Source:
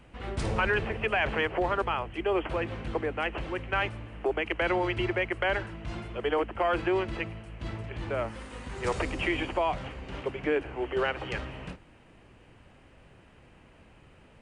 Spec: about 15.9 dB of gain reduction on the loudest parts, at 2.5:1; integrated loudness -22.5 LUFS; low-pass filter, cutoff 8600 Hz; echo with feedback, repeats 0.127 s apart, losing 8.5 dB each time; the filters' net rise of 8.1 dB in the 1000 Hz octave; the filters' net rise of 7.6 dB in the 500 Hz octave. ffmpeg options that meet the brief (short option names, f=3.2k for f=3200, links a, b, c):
-af "lowpass=8.6k,equalizer=f=500:t=o:g=7.5,equalizer=f=1k:t=o:g=8,acompressor=threshold=-41dB:ratio=2.5,aecho=1:1:127|254|381|508:0.376|0.143|0.0543|0.0206,volume=15.5dB"